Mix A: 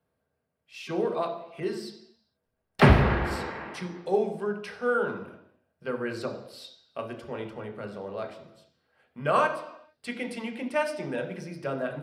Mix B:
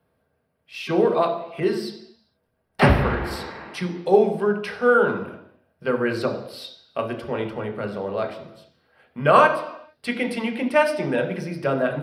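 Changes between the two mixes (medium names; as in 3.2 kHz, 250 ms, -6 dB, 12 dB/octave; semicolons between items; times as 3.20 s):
speech +9.0 dB; master: add peaking EQ 7.1 kHz -9 dB 0.57 oct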